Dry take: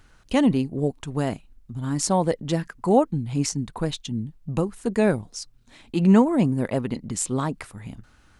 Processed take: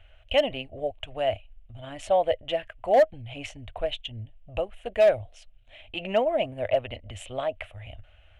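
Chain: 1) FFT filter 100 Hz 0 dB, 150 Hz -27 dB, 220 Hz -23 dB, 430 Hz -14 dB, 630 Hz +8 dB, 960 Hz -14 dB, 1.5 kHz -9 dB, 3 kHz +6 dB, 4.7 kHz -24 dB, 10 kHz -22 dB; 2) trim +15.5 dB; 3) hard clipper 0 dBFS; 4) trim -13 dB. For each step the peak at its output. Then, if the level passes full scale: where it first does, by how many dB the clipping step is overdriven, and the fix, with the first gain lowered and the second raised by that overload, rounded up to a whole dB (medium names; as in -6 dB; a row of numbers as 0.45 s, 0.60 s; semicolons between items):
-11.0 dBFS, +4.5 dBFS, 0.0 dBFS, -13.0 dBFS; step 2, 4.5 dB; step 2 +10.5 dB, step 4 -8 dB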